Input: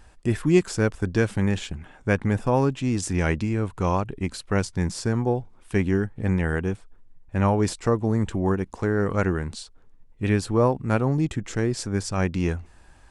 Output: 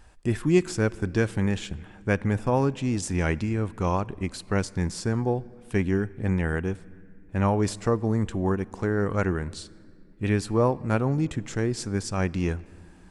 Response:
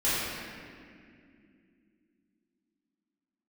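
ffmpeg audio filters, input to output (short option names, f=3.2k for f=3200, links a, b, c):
-filter_complex "[0:a]asplit=2[a][b];[1:a]atrim=start_sample=2205,adelay=34[c];[b][c]afir=irnorm=-1:irlink=0,volume=-34dB[d];[a][d]amix=inputs=2:normalize=0,volume=-2dB"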